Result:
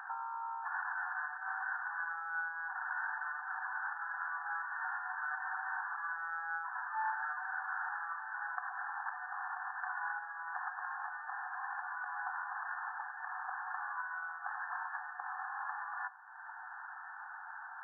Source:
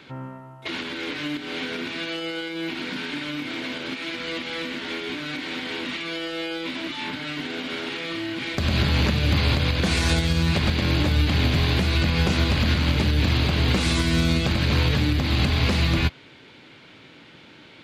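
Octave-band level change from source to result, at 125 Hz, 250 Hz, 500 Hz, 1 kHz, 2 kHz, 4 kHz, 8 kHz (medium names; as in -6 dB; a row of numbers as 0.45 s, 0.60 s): under -40 dB, under -40 dB, under -30 dB, -3.5 dB, -8.0 dB, under -40 dB, under -40 dB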